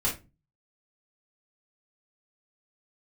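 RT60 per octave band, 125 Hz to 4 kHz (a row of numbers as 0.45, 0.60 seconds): 0.55, 0.45, 0.30, 0.25, 0.25, 0.20 seconds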